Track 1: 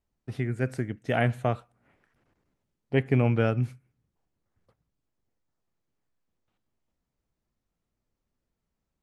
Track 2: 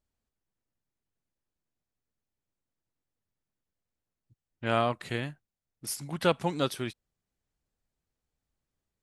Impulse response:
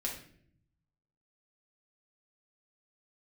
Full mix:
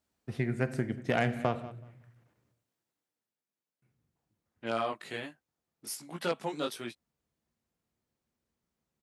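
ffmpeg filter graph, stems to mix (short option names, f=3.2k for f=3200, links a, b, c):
-filter_complex "[0:a]aeval=exprs='0.376*(cos(1*acos(clip(val(0)/0.376,-1,1)))-cos(1*PI/2))+0.0944*(cos(2*acos(clip(val(0)/0.376,-1,1)))-cos(2*PI/2))+0.0266*(cos(7*acos(clip(val(0)/0.376,-1,1)))-cos(7*PI/2))':c=same,volume=2dB,asplit=3[a][b][c];[a]atrim=end=2.52,asetpts=PTS-STARTPTS,afade=t=out:st=2.516:d=0.004:c=hsin[d];[b]atrim=start=2.52:end=3.82,asetpts=PTS-STARTPTS,volume=0[e];[c]atrim=start=3.82,asetpts=PTS-STARTPTS,afade=t=in:d=0.004:c=hsin[f];[d][e][f]concat=n=3:v=0:a=1,asplit=3[g][h][i];[h]volume=-8.5dB[j];[i]volume=-19.5dB[k];[1:a]highpass=220,flanger=delay=17:depth=2.6:speed=1.3,aeval=exprs='0.299*sin(PI/2*2*val(0)/0.299)':c=same,volume=-1.5dB,afade=t=out:st=2.78:d=0.6:silence=0.354813[l];[2:a]atrim=start_sample=2205[m];[j][m]afir=irnorm=-1:irlink=0[n];[k]aecho=0:1:188|376|564:1|0.2|0.04[o];[g][l][n][o]amix=inputs=4:normalize=0,highpass=72,acompressor=threshold=-25dB:ratio=3"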